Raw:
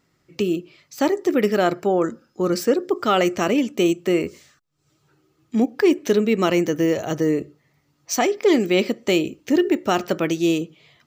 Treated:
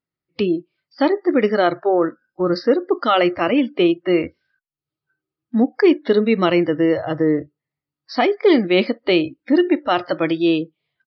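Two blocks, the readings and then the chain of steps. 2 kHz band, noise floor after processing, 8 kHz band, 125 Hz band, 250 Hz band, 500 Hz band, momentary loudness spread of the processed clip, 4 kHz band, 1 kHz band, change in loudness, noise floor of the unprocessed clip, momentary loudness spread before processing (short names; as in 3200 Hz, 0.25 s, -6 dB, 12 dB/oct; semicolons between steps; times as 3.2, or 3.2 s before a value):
+3.0 dB, under -85 dBFS, under -25 dB, 0.0 dB, +2.5 dB, +2.5 dB, 7 LU, +2.5 dB, +3.0 dB, +2.5 dB, -67 dBFS, 7 LU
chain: spectral noise reduction 26 dB; downsampling 11025 Hz; gain +3 dB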